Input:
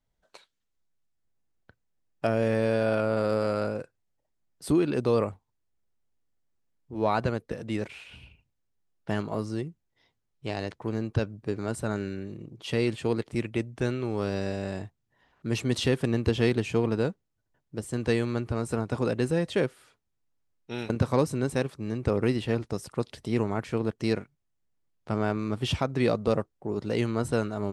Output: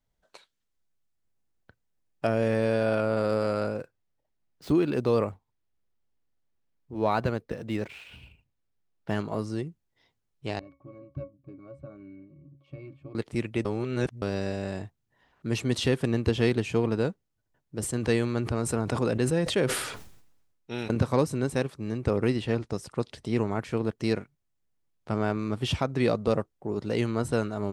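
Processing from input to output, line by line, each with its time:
3.75–9.16 s: median filter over 5 samples
10.59–13.15 s: pitch-class resonator C#, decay 0.18 s
13.65–14.22 s: reverse
17.76–21.00 s: decay stretcher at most 52 dB/s
22.30–23.52 s: low-pass 10 kHz

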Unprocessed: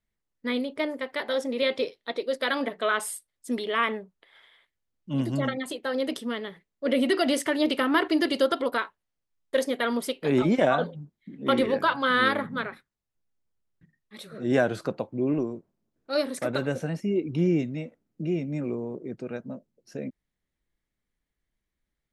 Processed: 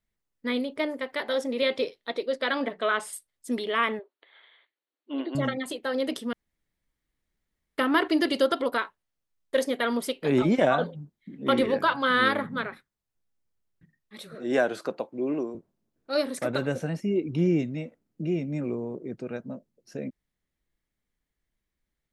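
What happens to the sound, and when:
2.26–3.13 s: distance through air 59 m
3.99–5.35 s: brick-wall FIR band-pass 260–4600 Hz
6.33–7.78 s: room tone
14.35–15.55 s: high-pass 290 Hz

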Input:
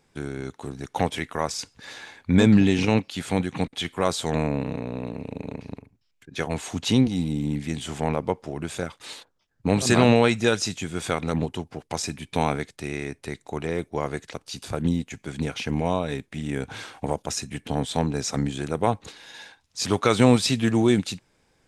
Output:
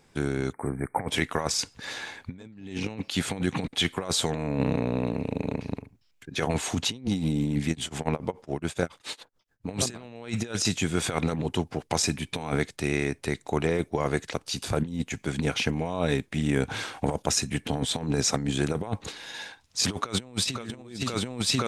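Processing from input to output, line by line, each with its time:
0.53–1.09 s: spectral selection erased 2.4–8 kHz
7.69–9.71 s: tremolo 7.1 Hz, depth 97%
19.99–20.62 s: echo throw 520 ms, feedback 80%, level -3 dB
whole clip: compressor with a negative ratio -27 dBFS, ratio -0.5

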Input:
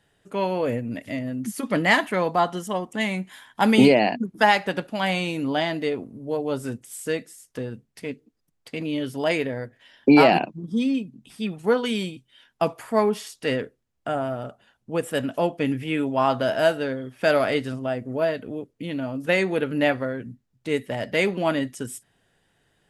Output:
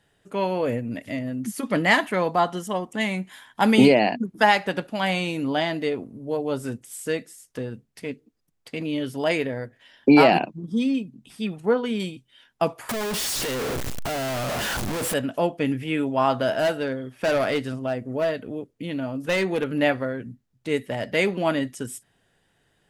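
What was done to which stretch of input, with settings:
11.60–12.00 s: treble shelf 2.6 kHz -11.5 dB
12.89–15.14 s: one-bit comparator
16.55–19.80 s: hard clipper -18 dBFS

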